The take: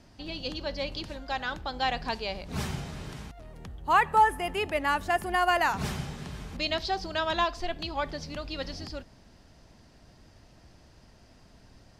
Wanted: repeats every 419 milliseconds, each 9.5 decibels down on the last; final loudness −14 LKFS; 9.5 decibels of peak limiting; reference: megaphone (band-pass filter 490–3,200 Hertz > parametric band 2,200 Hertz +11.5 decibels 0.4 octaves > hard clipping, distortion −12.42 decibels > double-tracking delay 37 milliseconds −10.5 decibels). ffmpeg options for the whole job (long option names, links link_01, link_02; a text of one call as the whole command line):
ffmpeg -i in.wav -filter_complex "[0:a]alimiter=limit=-21dB:level=0:latency=1,highpass=490,lowpass=3200,equalizer=frequency=2200:width_type=o:width=0.4:gain=11.5,aecho=1:1:419|838|1257|1676:0.335|0.111|0.0365|0.012,asoftclip=type=hard:threshold=-26dB,asplit=2[link_01][link_02];[link_02]adelay=37,volume=-10.5dB[link_03];[link_01][link_03]amix=inputs=2:normalize=0,volume=19.5dB" out.wav